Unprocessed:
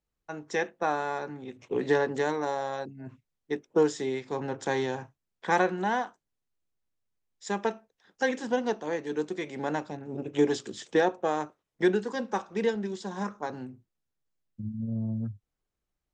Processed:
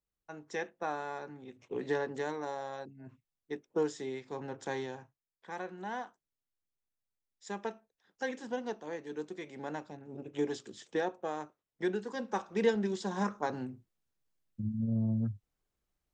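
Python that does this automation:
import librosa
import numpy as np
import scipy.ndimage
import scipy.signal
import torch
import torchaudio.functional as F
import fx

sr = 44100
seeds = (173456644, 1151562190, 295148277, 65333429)

y = fx.gain(x, sr, db=fx.line((4.74, -8.0), (5.51, -18.0), (6.04, -9.0), (11.86, -9.0), (12.79, 0.5)))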